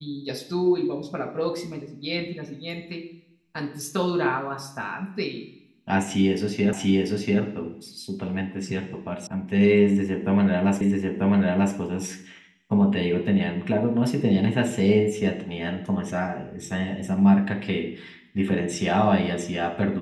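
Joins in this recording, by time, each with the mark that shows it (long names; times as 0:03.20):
0:06.73: the same again, the last 0.69 s
0:09.27: cut off before it has died away
0:10.81: the same again, the last 0.94 s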